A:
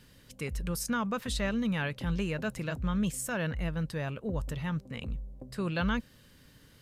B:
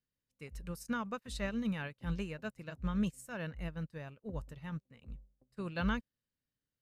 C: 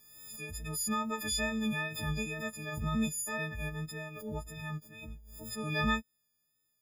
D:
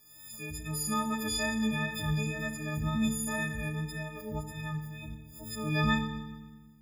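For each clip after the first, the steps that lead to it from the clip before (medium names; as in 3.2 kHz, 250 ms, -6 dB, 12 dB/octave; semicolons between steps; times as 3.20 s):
band-stop 3.3 kHz, Q 13; upward expansion 2.5:1, over -49 dBFS; trim -1.5 dB
partials quantised in pitch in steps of 6 st; wow and flutter 25 cents; swell ahead of each attack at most 50 dB/s; trim +1 dB
FDN reverb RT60 1.2 s, low-frequency decay 1.5×, high-frequency decay 0.95×, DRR 4.5 dB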